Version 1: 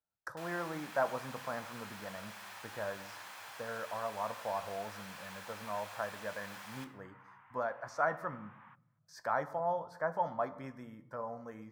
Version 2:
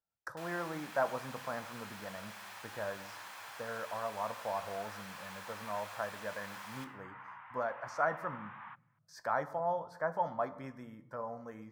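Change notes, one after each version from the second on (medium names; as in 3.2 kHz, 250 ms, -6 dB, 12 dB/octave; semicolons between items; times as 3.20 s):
second sound +9.0 dB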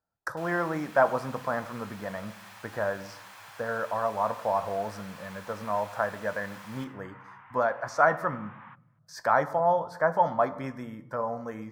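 speech +10.0 dB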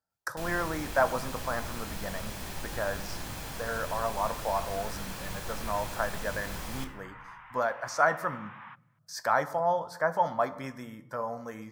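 speech -4.0 dB; first sound: remove Chebyshev high-pass 1.2 kHz, order 2; master: add treble shelf 2.8 kHz +11.5 dB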